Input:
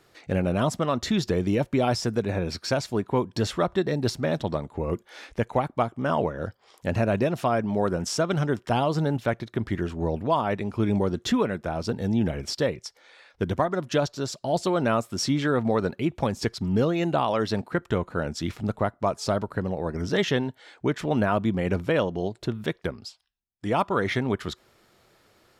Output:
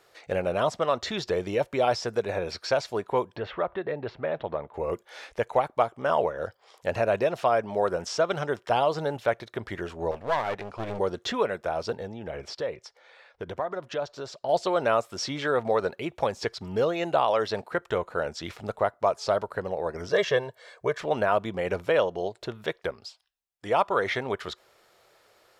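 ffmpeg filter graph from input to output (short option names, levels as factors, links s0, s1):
-filter_complex "[0:a]asettb=1/sr,asplit=3[s0][s1][s2];[s0]atrim=end=3.364[s3];[s1]atrim=start=3.36:end=4.74,asetpts=PTS-STARTPTS,afade=t=in:d=0.004:c=qsin,afade=t=out:st=1.376:d=0.004:c=qsin,lowpass=f=2800:w=0.5412,lowpass=f=2800:w=1.3066,acompressor=threshold=0.0562:ratio=2:attack=3.2:release=140:knee=1:detection=peak[s4];[s2]atrim=start=4.736[s5];[s3][s4]acrossfade=d=0.004:c1=hsin:c2=qsin[s6];[s6][s5]acrossfade=d=0.004:c1=qsin:c2=hsin,asettb=1/sr,asplit=3[s7][s8][s9];[s7]atrim=end=10.114[s10];[s8]atrim=start=10.11:end=10.99,asetpts=PTS-STARTPTS,afade=t=in:d=0.004:c=qsin,afade=t=out:st=0.876:d=0.004:c=qsin,lowpass=6000,aeval=exprs='clip(val(0),-1,0.0211)':c=same[s11];[s9]atrim=start=10.986[s12];[s10][s11]acrossfade=d=0.004:c1=hsin:c2=qsin[s13];[s13][s12]acrossfade=d=0.004:c1=qsin:c2=hsin,asettb=1/sr,asplit=3[s14][s15][s16];[s14]atrim=end=11.964[s17];[s15]atrim=start=11.96:end=14.49,asetpts=PTS-STARTPTS,afade=t=in:d=0.004:c=qsin,afade=t=out:st=2.526:d=0.004:c=qsin,lowpass=f=2900:p=1,acompressor=threshold=0.0447:ratio=3:attack=3.2:release=140:knee=1:detection=peak[s18];[s16]atrim=start=14.486[s19];[s17][s18]acrossfade=d=0.004:c1=hsin:c2=qsin[s20];[s20][s19]acrossfade=d=0.004:c1=qsin:c2=hsin,asettb=1/sr,asplit=3[s21][s22][s23];[s21]atrim=end=20.114[s24];[s22]atrim=start=20.11:end=21,asetpts=PTS-STARTPTS,afade=t=in:d=0.004:c=qsin,afade=t=out:st=0.886:d=0.004:c=qsin,equalizer=f=3000:t=o:w=0.94:g=-5,aecho=1:1:1.8:0.66,atrim=end_sample=39249[s25];[s23]atrim=start=20.996[s26];[s24][s25]acrossfade=d=0.004:c1=hsin:c2=qsin[s27];[s27][s26]acrossfade=d=0.004:c1=qsin:c2=hsin,acrossover=split=6200[s28][s29];[s29]acompressor=threshold=0.00178:ratio=4:attack=1:release=60[s30];[s28][s30]amix=inputs=2:normalize=0,lowshelf=f=360:t=q:w=1.5:g=-9.5"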